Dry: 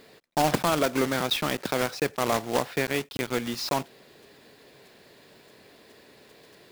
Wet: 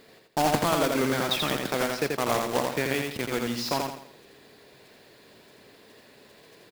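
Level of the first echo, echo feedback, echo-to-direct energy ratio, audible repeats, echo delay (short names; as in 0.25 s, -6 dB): -3.5 dB, 38%, -3.0 dB, 4, 84 ms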